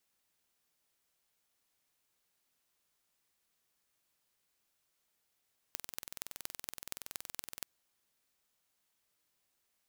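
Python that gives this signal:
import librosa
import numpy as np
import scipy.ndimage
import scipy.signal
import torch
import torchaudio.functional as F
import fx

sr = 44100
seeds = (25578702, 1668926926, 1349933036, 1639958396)

y = fx.impulse_train(sr, length_s=1.9, per_s=21.3, accent_every=5, level_db=-10.0)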